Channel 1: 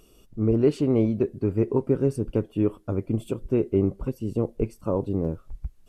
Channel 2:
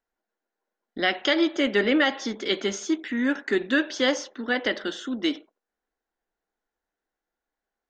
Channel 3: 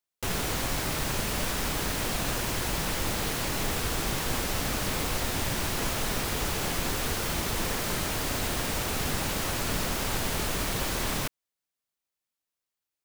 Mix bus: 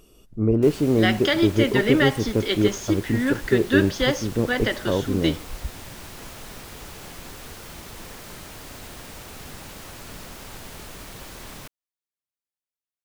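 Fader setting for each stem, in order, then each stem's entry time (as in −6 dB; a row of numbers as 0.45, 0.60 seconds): +2.0, +0.5, −10.0 decibels; 0.00, 0.00, 0.40 seconds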